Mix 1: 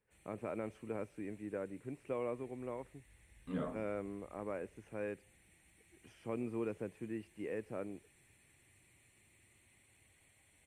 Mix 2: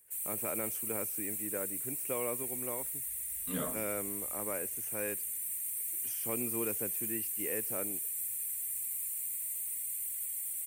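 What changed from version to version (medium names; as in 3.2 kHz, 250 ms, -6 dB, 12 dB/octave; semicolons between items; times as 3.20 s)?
master: remove tape spacing loss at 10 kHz 36 dB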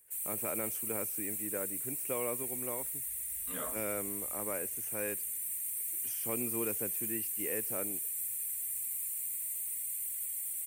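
second voice: add band-pass filter 1.4 kHz, Q 0.52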